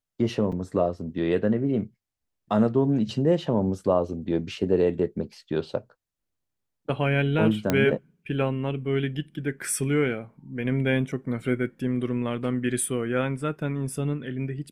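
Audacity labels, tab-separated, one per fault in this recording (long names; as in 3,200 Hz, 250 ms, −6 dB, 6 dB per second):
0.520000	0.520000	drop-out 4.7 ms
7.700000	7.700000	click −8 dBFS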